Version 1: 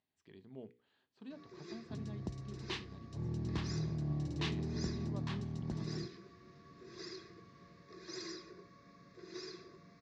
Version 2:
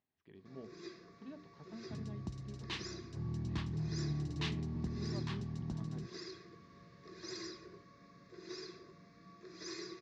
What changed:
speech: add distance through air 250 m; first sound: entry -0.85 s; second sound: add peaking EQ 500 Hz -13 dB 0.66 oct

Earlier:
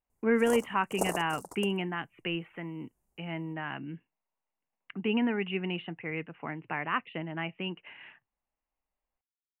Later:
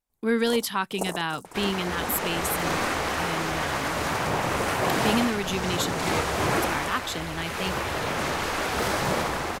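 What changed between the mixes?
speech: remove rippled Chebyshev low-pass 2.9 kHz, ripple 3 dB; second sound: unmuted

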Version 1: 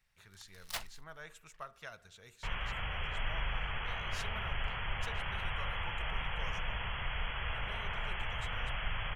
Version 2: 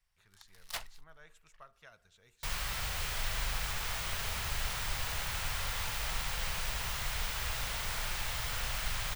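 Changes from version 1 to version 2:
speech -8.5 dB; second sound: remove brick-wall FIR low-pass 3.4 kHz

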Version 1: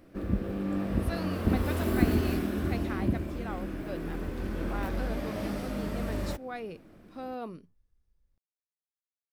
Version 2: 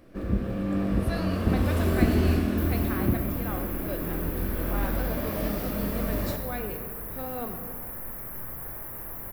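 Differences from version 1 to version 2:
second sound: unmuted; reverb: on, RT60 1.6 s

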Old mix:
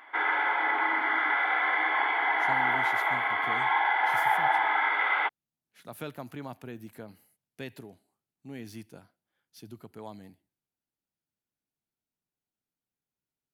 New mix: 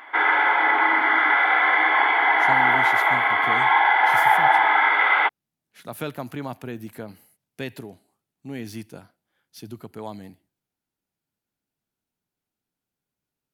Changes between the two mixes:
speech +8.0 dB; background +8.0 dB

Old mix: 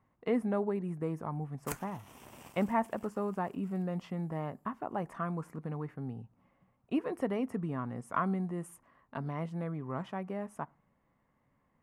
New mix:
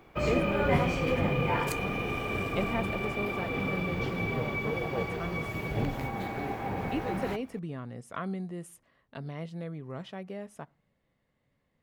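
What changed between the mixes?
first sound: unmuted; master: add graphic EQ 250/500/1000/4000 Hz -4/+3/-10/+11 dB

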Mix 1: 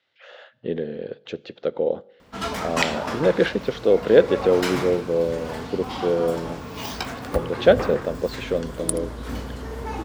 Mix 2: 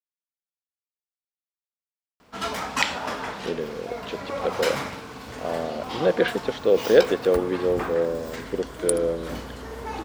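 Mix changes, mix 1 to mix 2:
speech: entry +2.80 s; master: add bass shelf 260 Hz -7.5 dB

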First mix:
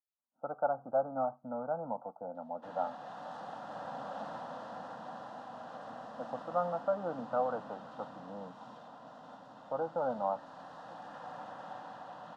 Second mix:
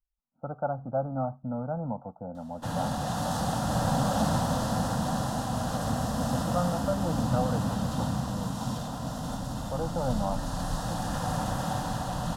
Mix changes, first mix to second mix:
background +11.5 dB; master: remove band-pass 410–2400 Hz

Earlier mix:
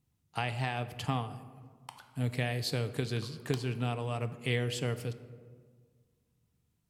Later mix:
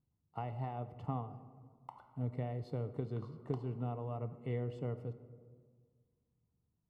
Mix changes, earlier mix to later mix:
speech -5.5 dB; master: add Savitzky-Golay filter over 65 samples

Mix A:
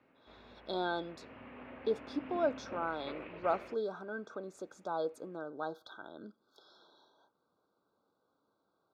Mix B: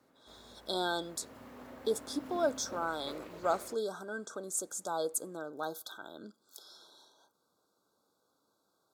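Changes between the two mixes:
background: remove resonant low-pass 2.6 kHz, resonance Q 4.1; master: remove distance through air 290 m

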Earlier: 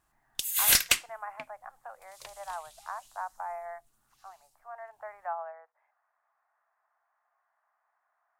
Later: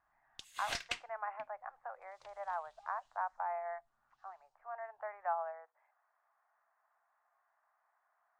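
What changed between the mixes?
background -11.5 dB; master: add distance through air 130 m

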